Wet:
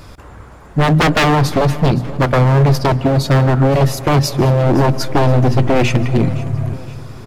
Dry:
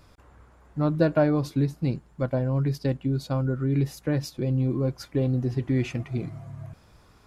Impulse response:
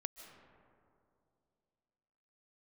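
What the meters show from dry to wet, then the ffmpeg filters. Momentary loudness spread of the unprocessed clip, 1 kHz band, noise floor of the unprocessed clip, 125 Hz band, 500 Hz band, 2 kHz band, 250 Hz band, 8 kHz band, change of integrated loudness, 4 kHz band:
10 LU, +21.0 dB, −57 dBFS, +12.5 dB, +12.0 dB, +19.0 dB, +10.0 dB, +18.0 dB, +12.0 dB, +20.0 dB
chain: -filter_complex "[0:a]bandreject=frequency=60:width_type=h:width=6,bandreject=frequency=120:width_type=h:width=6,bandreject=frequency=180:width_type=h:width=6,bandreject=frequency=240:width_type=h:width=6,acontrast=35,aeval=exprs='0.112*(abs(mod(val(0)/0.112+3,4)-2)-1)':channel_layout=same,aecho=1:1:516|1032|1548|2064:0.119|0.0535|0.0241|0.0108,asplit=2[link_01][link_02];[1:a]atrim=start_sample=2205,lowshelf=frequency=200:gain=6[link_03];[link_02][link_03]afir=irnorm=-1:irlink=0,volume=-3.5dB[link_04];[link_01][link_04]amix=inputs=2:normalize=0,volume=8.5dB"

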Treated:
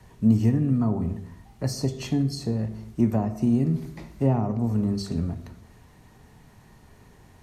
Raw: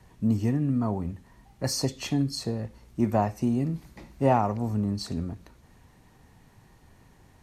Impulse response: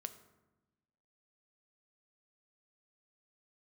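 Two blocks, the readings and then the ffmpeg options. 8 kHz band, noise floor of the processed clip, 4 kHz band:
−4.0 dB, −53 dBFS, −3.5 dB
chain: -filter_complex "[0:a]acrossover=split=390[link_01][link_02];[link_02]acompressor=threshold=-40dB:ratio=3[link_03];[link_01][link_03]amix=inputs=2:normalize=0[link_04];[1:a]atrim=start_sample=2205,afade=type=out:start_time=0.37:duration=0.01,atrim=end_sample=16758[link_05];[link_04][link_05]afir=irnorm=-1:irlink=0,volume=7dB"

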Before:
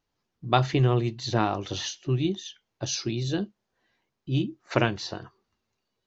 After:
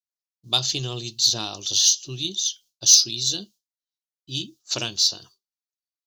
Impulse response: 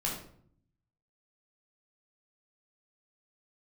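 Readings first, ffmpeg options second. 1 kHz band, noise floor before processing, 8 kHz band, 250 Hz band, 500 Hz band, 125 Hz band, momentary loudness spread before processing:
−9.5 dB, −81 dBFS, can't be measured, −9.5 dB, −9.5 dB, −9.5 dB, 14 LU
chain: -af "aexciter=amount=13.3:drive=9.4:freq=3300,agate=range=-33dB:threshold=-34dB:ratio=3:detection=peak,volume=-9.5dB"

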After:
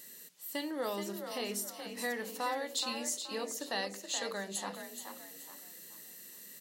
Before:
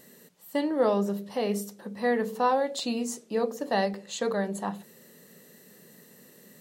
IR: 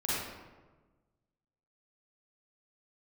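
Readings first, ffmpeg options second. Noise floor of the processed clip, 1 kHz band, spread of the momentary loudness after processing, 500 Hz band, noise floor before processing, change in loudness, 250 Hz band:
−52 dBFS, −10.0 dB, 13 LU, −12.0 dB, −55 dBFS, −9.0 dB, −12.0 dB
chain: -filter_complex "[0:a]tiltshelf=frequency=1300:gain=-9.5,acompressor=threshold=-36dB:ratio=1.5,equalizer=frequency=310:width=2.1:gain=4,asplit=2[link_01][link_02];[link_02]asplit=4[link_03][link_04][link_05][link_06];[link_03]adelay=425,afreqshift=41,volume=-7.5dB[link_07];[link_04]adelay=850,afreqshift=82,volume=-16.1dB[link_08];[link_05]adelay=1275,afreqshift=123,volume=-24.8dB[link_09];[link_06]adelay=1700,afreqshift=164,volume=-33.4dB[link_10];[link_07][link_08][link_09][link_10]amix=inputs=4:normalize=0[link_11];[link_01][link_11]amix=inputs=2:normalize=0,volume=-3.5dB"

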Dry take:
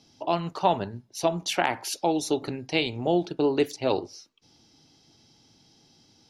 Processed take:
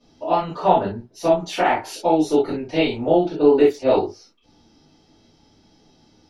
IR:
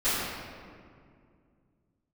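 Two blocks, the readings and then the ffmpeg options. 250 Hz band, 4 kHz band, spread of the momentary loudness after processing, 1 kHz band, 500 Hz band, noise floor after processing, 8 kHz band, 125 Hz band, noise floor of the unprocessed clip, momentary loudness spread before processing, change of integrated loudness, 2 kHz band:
+7.0 dB, −0.5 dB, 7 LU, +7.0 dB, +9.0 dB, −58 dBFS, can't be measured, +3.0 dB, −61 dBFS, 5 LU, +7.5 dB, +3.0 dB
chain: -filter_complex "[0:a]highshelf=frequency=2300:gain=-11.5[link_01];[1:a]atrim=start_sample=2205,atrim=end_sample=3528[link_02];[link_01][link_02]afir=irnorm=-1:irlink=0,volume=-1.5dB"

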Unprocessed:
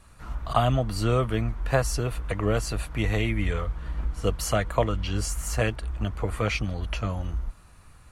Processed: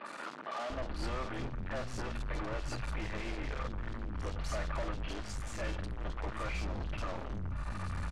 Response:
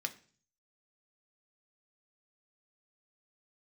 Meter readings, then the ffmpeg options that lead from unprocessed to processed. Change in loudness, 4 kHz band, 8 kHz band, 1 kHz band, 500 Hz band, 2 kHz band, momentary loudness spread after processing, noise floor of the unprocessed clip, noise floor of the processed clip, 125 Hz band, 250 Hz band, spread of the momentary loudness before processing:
−12.0 dB, −11.0 dB, −16.0 dB, −10.0 dB, −13.5 dB, −9.0 dB, 3 LU, −51 dBFS, −43 dBFS, −13.5 dB, −12.0 dB, 8 LU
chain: -filter_complex "[0:a]acompressor=threshold=-41dB:ratio=4,aecho=1:1:3.4:0.49,asplit=2[link_01][link_02];[1:a]atrim=start_sample=2205,asetrate=30429,aresample=44100[link_03];[link_02][link_03]afir=irnorm=-1:irlink=0,volume=-6.5dB[link_04];[link_01][link_04]amix=inputs=2:normalize=0,aeval=exprs='(tanh(447*val(0)+0.4)-tanh(0.4))/447':channel_layout=same,lowpass=7900,aemphasis=mode=reproduction:type=50kf,acrossover=split=240|3100[link_05][link_06][link_07];[link_07]adelay=50[link_08];[link_05]adelay=700[link_09];[link_09][link_06][link_08]amix=inputs=3:normalize=0,volume=17.5dB"

